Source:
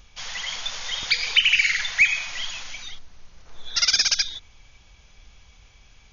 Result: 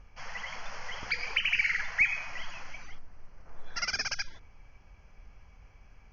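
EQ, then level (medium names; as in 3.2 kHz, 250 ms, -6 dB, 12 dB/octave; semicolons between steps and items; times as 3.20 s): boxcar filter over 12 samples; hum notches 60/120/180/240/300/360/420/480 Hz; -1.0 dB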